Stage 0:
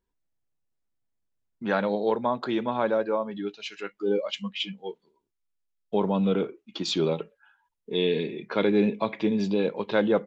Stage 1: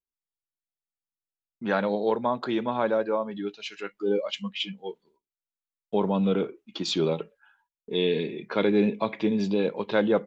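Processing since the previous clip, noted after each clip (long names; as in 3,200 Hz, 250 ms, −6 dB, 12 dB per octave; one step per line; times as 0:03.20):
noise gate with hold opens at −56 dBFS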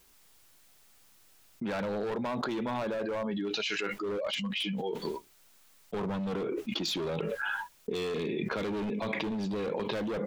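gain into a clipping stage and back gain 25 dB
envelope flattener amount 100%
level −6.5 dB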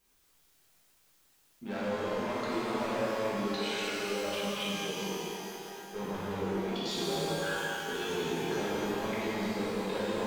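output level in coarse steps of 11 dB
reverb with rising layers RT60 3.5 s, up +12 semitones, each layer −8 dB, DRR −9.5 dB
level −9 dB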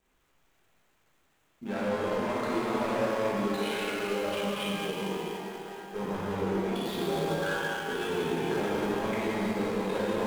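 running median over 9 samples
level +3.5 dB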